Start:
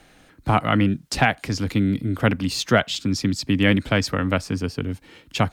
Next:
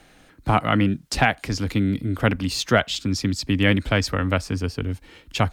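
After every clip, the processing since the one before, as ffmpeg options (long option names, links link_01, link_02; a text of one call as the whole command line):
ffmpeg -i in.wav -af "asubboost=boost=4.5:cutoff=69" out.wav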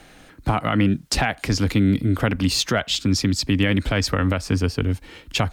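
ffmpeg -i in.wav -af "alimiter=limit=-14.5dB:level=0:latency=1:release=136,volume=5dB" out.wav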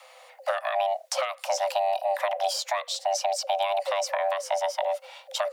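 ffmpeg -i in.wav -filter_complex "[0:a]acrossover=split=400|970|4300[link_01][link_02][link_03][link_04];[link_01]acompressor=threshold=-20dB:ratio=4[link_05];[link_02]acompressor=threshold=-32dB:ratio=4[link_06];[link_03]acompressor=threshold=-32dB:ratio=4[link_07];[link_04]acompressor=threshold=-29dB:ratio=4[link_08];[link_05][link_06][link_07][link_08]amix=inputs=4:normalize=0,afreqshift=490,volume=-3.5dB" out.wav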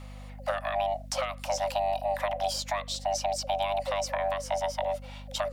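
ffmpeg -i in.wav -af "aeval=exprs='val(0)+0.0112*(sin(2*PI*50*n/s)+sin(2*PI*2*50*n/s)/2+sin(2*PI*3*50*n/s)/3+sin(2*PI*4*50*n/s)/4+sin(2*PI*5*50*n/s)/5)':channel_layout=same,volume=-3dB" out.wav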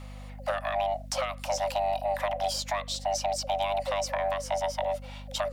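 ffmpeg -i in.wav -af "asoftclip=type=tanh:threshold=-17.5dB,volume=1dB" out.wav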